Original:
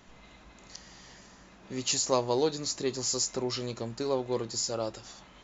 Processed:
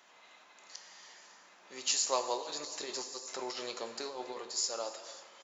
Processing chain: high-pass 660 Hz 12 dB/octave; 2.36–4.38 s: compressor with a negative ratio -40 dBFS, ratio -1; feedback delay 277 ms, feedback 58%, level -21 dB; plate-style reverb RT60 1.4 s, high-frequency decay 0.8×, DRR 8 dB; trim -2 dB

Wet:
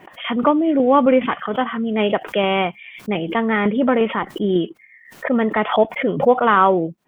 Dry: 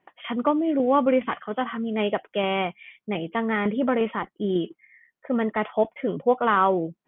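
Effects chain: swell ahead of each attack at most 120 dB/s; trim +6 dB

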